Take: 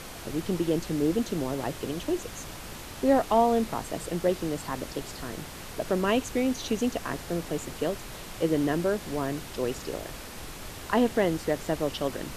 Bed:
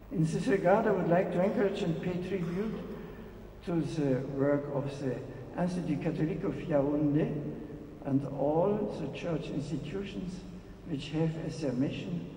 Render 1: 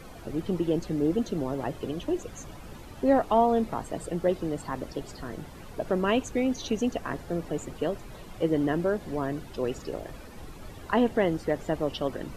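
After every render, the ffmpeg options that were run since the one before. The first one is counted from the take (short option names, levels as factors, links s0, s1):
-af "afftdn=nr=12:nf=-41"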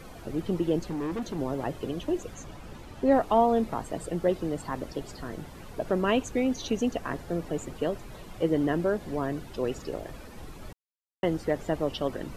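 -filter_complex "[0:a]asettb=1/sr,asplit=3[s0][s1][s2];[s0]atrim=end=0.824[s3];[s1]atrim=start=0.82:end=1.39,asetpts=PTS-STARTPTS,afade=t=in:d=0.004:c=qsin,afade=t=out:st=0.566:d=0.004:c=qsin,asoftclip=type=hard:threshold=0.0355[s4];[s2]atrim=start=1.386[s5];[s3][s4]acrossfade=d=0.004:c1=hsin:c2=qsin[s6];[s6][s5]acrossfade=d=0.004:c1=qsin:c2=hsin,asettb=1/sr,asplit=3[s7][s8][s9];[s7]atrim=end=2.344[s10];[s8]atrim=start=2.34:end=3.12,asetpts=PTS-STARTPTS,afade=t=in:d=0.004:c=qsin,afade=t=out:st=0.776:d=0.004:c=qsin,highshelf=f=10000:g=-8.5[s11];[s9]atrim=start=3.116[s12];[s10][s11]acrossfade=d=0.004:c1=hsin:c2=qsin[s13];[s13][s12]acrossfade=d=0.004:c1=qsin:c2=hsin,asplit=3[s14][s15][s16];[s14]atrim=end=10.73,asetpts=PTS-STARTPTS,afade=t=out:st=10.726:d=0.004:c=hsin[s17];[s15]atrim=start=10.73:end=11.23,asetpts=PTS-STARTPTS,volume=0[s18];[s16]atrim=start=11.23,asetpts=PTS-STARTPTS,afade=t=in:d=0.004:c=hsin[s19];[s17][s18][s19]concat=n=3:v=0:a=1"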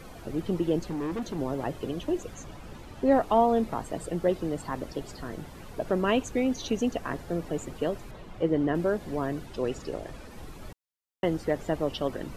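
-filter_complex "[0:a]asettb=1/sr,asplit=3[s0][s1][s2];[s0]atrim=end=8.114[s3];[s1]atrim=start=8.11:end=8.75,asetpts=PTS-STARTPTS,afade=t=in:d=0.004:c=qsin,afade=t=out:st=0.636:d=0.004:c=qsin,lowpass=f=2700:p=1[s4];[s2]atrim=start=8.746[s5];[s3][s4]acrossfade=d=0.004:c1=hsin:c2=qsin[s6];[s6][s5]acrossfade=d=0.004:c1=qsin:c2=hsin,asettb=1/sr,asplit=3[s7][s8][s9];[s7]atrim=end=9.464[s10];[s8]atrim=start=9.46:end=10.31,asetpts=PTS-STARTPTS,afade=t=in:d=0.004:c=qsin,afade=t=out:st=0.846:d=0.004:c=qsin,lowpass=11000[s11];[s9]atrim=start=10.306[s12];[s10][s11]acrossfade=d=0.004:c1=hsin:c2=qsin[s13];[s13][s12]acrossfade=d=0.004:c1=qsin:c2=hsin"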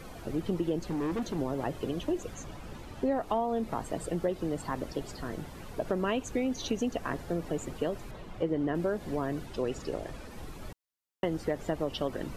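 -af "acompressor=threshold=0.0501:ratio=5"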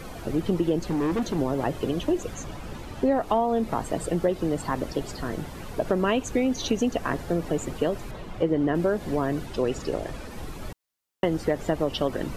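-af "volume=2.11"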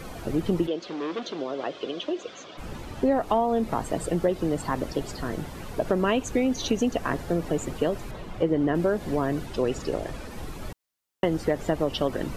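-filter_complex "[0:a]asplit=3[s0][s1][s2];[s0]afade=t=out:st=0.66:d=0.02[s3];[s1]highpass=430,equalizer=f=870:t=q:w=4:g=-8,equalizer=f=1800:t=q:w=4:g=-4,equalizer=f=3400:t=q:w=4:g=6,lowpass=f=5500:w=0.5412,lowpass=f=5500:w=1.3066,afade=t=in:st=0.66:d=0.02,afade=t=out:st=2.57:d=0.02[s4];[s2]afade=t=in:st=2.57:d=0.02[s5];[s3][s4][s5]amix=inputs=3:normalize=0"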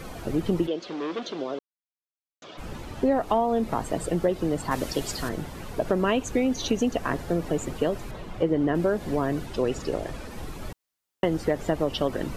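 -filter_complex "[0:a]asettb=1/sr,asplit=3[s0][s1][s2];[s0]atrim=end=4.714[s3];[s1]atrim=start=4.71:end=5.29,asetpts=PTS-STARTPTS,afade=t=in:d=0.004:c=qsin,afade=t=out:st=0.576:d=0.004:c=qsin,highshelf=f=2400:g=10[s4];[s2]atrim=start=5.286[s5];[s3][s4]acrossfade=d=0.004:c1=hsin:c2=qsin[s6];[s6][s5]acrossfade=d=0.004:c1=qsin:c2=hsin,asplit=3[s7][s8][s9];[s7]atrim=end=1.59,asetpts=PTS-STARTPTS,afade=t=out:st=1.586:d=0.004:c=hsin[s10];[s8]atrim=start=1.59:end=2.42,asetpts=PTS-STARTPTS,volume=0[s11];[s9]atrim=start=2.42,asetpts=PTS-STARTPTS,afade=t=in:d=0.004:c=hsin[s12];[s10][s11][s12]concat=n=3:v=0:a=1"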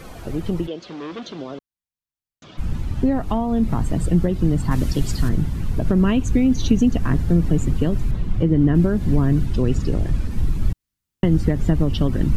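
-af "asubboost=boost=10:cutoff=180"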